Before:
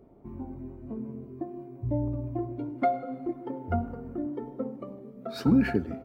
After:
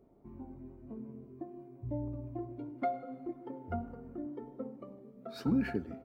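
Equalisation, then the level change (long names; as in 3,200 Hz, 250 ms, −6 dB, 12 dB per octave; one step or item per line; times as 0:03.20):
parametric band 91 Hz −2.5 dB
−8.0 dB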